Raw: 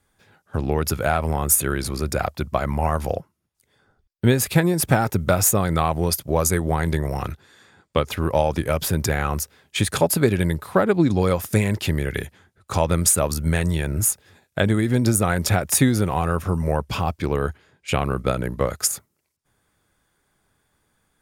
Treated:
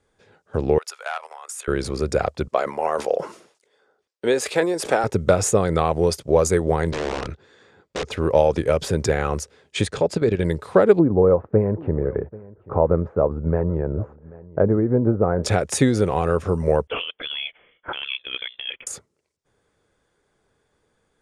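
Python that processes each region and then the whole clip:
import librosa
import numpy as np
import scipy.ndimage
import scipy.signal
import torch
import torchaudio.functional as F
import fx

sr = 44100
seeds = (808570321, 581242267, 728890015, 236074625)

y = fx.chain(x, sr, fx.highpass(hz=860.0, slope=24),
    fx.level_steps(step_db=13),
    fx.transformer_sat(knee_hz=1300.0), at=(0.78, 1.68))
y = fx.chain(y, sr, fx.highpass(hz=420.0, slope=12),
    fx.sustainer(db_per_s=100.0), at=(2.48, 5.04))
y = fx.chain(y, sr, fx.overflow_wrap(gain_db=20.0),
    fx.air_absorb(metres=62.0), at=(6.91, 8.11))
y = fx.chain(y, sr, fx.lowpass(hz=6300.0, slope=12),
    fx.low_shelf(hz=81.0, db=5.0),
    fx.level_steps(step_db=10), at=(9.87, 10.45))
y = fx.chain(y, sr, fx.lowpass(hz=1200.0, slope=24),
    fx.echo_single(ms=787, db=-21.0), at=(10.99, 15.44))
y = fx.chain(y, sr, fx.highpass(hz=440.0, slope=24),
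    fx.over_compress(threshold_db=-28.0, ratio=-1.0),
    fx.freq_invert(carrier_hz=3800), at=(16.87, 18.87))
y = scipy.signal.sosfilt(scipy.signal.butter(4, 8500.0, 'lowpass', fs=sr, output='sos'), y)
y = fx.peak_eq(y, sr, hz=460.0, db=10.5, octaves=0.75)
y = y * 10.0 ** (-2.0 / 20.0)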